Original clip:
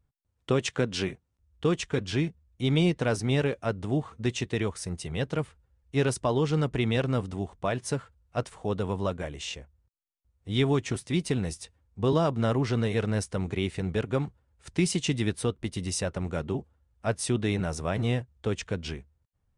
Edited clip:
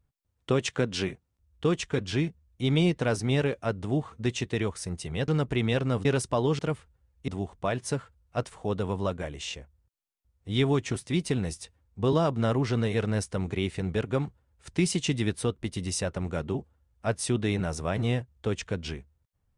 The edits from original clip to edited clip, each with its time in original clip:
5.28–5.97 swap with 6.51–7.28

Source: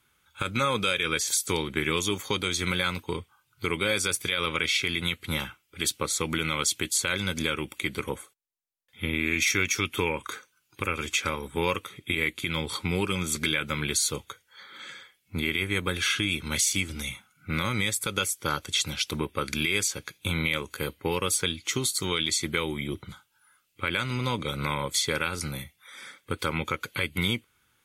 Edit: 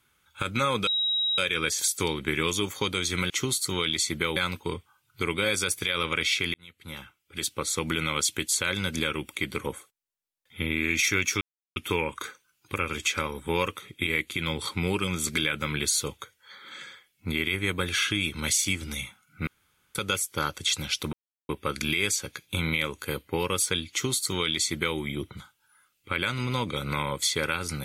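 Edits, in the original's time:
0.87 add tone 3830 Hz -23 dBFS 0.51 s
4.97–6.24 fade in
9.84 insert silence 0.35 s
17.55–18.03 room tone
19.21 insert silence 0.36 s
21.63–22.69 copy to 2.79

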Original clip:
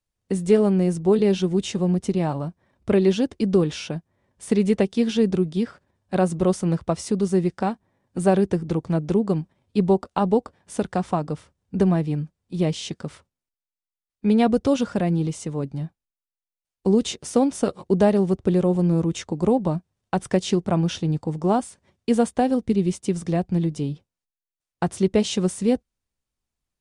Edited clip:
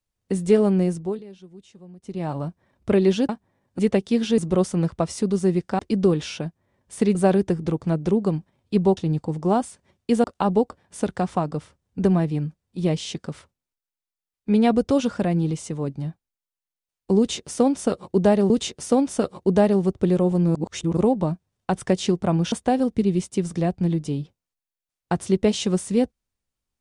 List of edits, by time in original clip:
0.82–2.42 dip -23 dB, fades 0.41 s
3.29–4.65 swap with 7.68–8.18
5.24–6.27 cut
16.94–18.26 loop, 2 plays
18.99–19.41 reverse
20.96–22.23 move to 10

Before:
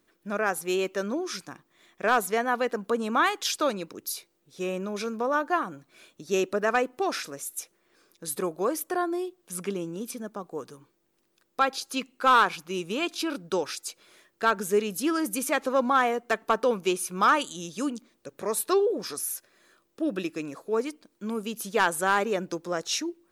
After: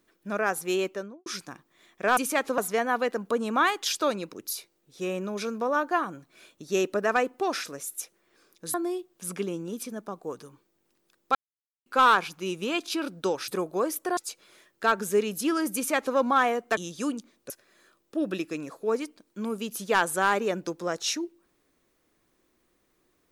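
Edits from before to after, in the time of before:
0.79–1.26 studio fade out
8.33–9.02 move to 13.76
11.63–12.14 mute
15.34–15.75 copy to 2.17
16.36–17.55 cut
18.28–19.35 cut

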